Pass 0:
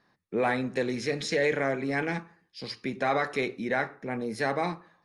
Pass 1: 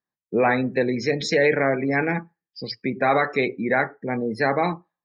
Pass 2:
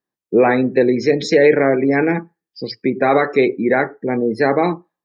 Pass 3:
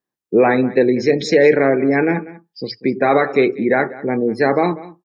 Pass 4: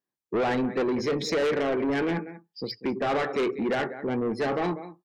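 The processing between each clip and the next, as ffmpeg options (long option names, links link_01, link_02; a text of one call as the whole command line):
ffmpeg -i in.wav -af "afftdn=noise_reduction=31:noise_floor=-39,volume=7dB" out.wav
ffmpeg -i in.wav -af "equalizer=frequency=360:width_type=o:width=1.2:gain=8.5,volume=2dB" out.wav
ffmpeg -i in.wav -filter_complex "[0:a]asplit=2[link_01][link_02];[link_02]adelay=192.4,volume=-18dB,highshelf=frequency=4000:gain=-4.33[link_03];[link_01][link_03]amix=inputs=2:normalize=0" out.wav
ffmpeg -i in.wav -af "asoftclip=type=tanh:threshold=-16.5dB,volume=-5.5dB" out.wav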